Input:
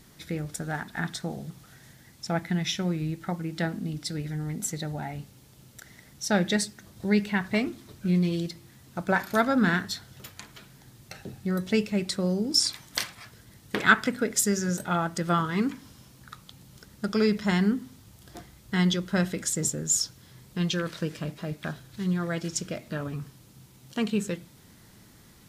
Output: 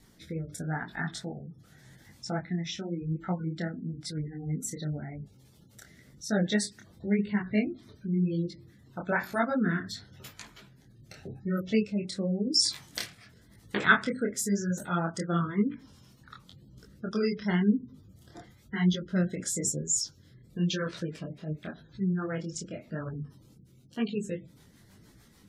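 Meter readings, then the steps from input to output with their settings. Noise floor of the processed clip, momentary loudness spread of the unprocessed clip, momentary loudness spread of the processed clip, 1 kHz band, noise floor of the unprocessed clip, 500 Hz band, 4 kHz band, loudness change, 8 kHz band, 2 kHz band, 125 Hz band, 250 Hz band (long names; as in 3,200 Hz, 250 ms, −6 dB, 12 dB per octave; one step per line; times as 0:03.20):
−59 dBFS, 18 LU, 15 LU, −4.5 dB, −54 dBFS, −3.5 dB, −3.5 dB, −3.0 dB, −4.0 dB, −3.5 dB, −2.0 dB, −2.5 dB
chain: gate on every frequency bin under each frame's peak −25 dB strong
rotating-speaker cabinet horn 0.85 Hz, later 6.7 Hz, at 0:23.82
micro pitch shift up and down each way 33 cents
level +2.5 dB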